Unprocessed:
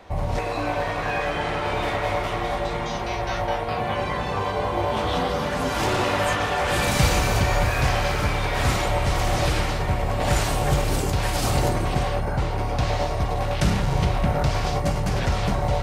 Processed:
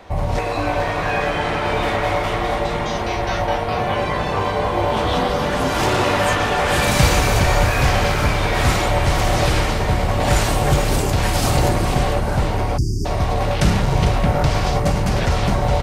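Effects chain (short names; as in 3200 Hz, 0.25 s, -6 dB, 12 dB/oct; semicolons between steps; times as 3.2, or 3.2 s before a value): frequency-shifting echo 0.45 s, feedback 47%, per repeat -130 Hz, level -10.5 dB; spectral delete 12.78–13.05, 420–4600 Hz; gain +4.5 dB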